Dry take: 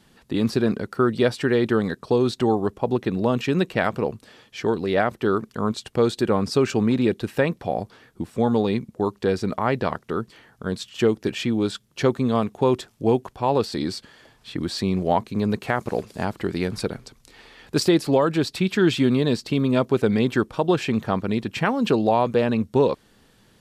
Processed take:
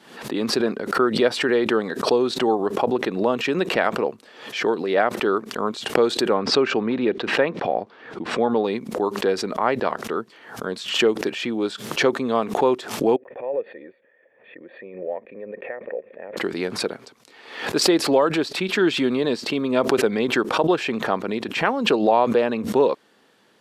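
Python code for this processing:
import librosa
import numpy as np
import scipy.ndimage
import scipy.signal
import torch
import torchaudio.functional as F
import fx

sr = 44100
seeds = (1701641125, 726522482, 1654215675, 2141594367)

y = fx.lowpass(x, sr, hz=3600.0, slope=12, at=(6.34, 8.64))
y = fx.formant_cascade(y, sr, vowel='e', at=(13.16, 16.37))
y = scipy.signal.sosfilt(scipy.signal.butter(2, 330.0, 'highpass', fs=sr, output='sos'), y)
y = fx.high_shelf(y, sr, hz=5000.0, db=-10.0)
y = fx.pre_swell(y, sr, db_per_s=86.0)
y = F.gain(torch.from_numpy(y), 2.5).numpy()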